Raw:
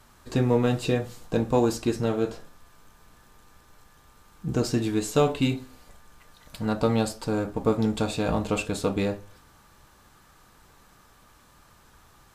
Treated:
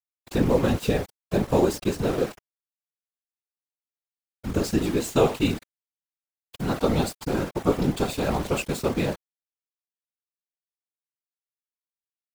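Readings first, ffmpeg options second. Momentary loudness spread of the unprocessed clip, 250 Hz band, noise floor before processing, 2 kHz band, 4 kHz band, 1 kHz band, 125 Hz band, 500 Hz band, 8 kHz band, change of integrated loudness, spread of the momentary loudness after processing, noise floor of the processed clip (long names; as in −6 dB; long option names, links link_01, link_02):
8 LU, +0.5 dB, −57 dBFS, +1.5 dB, +1.0 dB, +1.0 dB, 0.0 dB, +1.0 dB, +1.0 dB, +1.0 dB, 8 LU, below −85 dBFS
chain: -af "aeval=exprs='val(0)*gte(abs(val(0)),0.0237)':channel_layout=same,afftfilt=real='hypot(re,im)*cos(2*PI*random(0))':imag='hypot(re,im)*sin(2*PI*random(1))':win_size=512:overlap=0.75,volume=7dB"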